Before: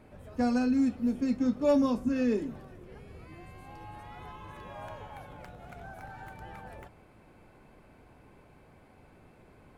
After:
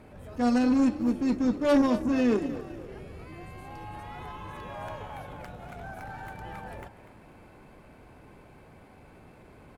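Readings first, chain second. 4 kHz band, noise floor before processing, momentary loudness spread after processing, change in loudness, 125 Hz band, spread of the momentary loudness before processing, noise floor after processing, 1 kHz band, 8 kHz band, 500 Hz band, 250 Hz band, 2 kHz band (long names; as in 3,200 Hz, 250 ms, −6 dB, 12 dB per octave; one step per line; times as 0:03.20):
+5.5 dB, −58 dBFS, 20 LU, +2.0 dB, +4.0 dB, 22 LU, −53 dBFS, +4.5 dB, can't be measured, +2.5 dB, +3.0 dB, +5.0 dB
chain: harmonic generator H 4 −14 dB, 5 −26 dB, 6 −16 dB, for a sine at −17 dBFS
echo with shifted repeats 244 ms, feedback 42%, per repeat +44 Hz, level −14 dB
transient designer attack −7 dB, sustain −3 dB
level +3.5 dB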